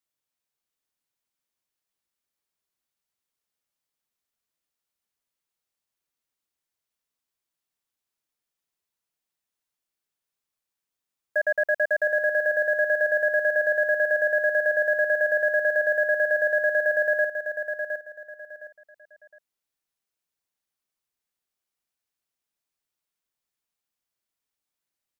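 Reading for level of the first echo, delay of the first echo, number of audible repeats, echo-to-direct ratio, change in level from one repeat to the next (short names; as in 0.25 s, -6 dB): -7.0 dB, 0.713 s, 3, -6.5 dB, -11.0 dB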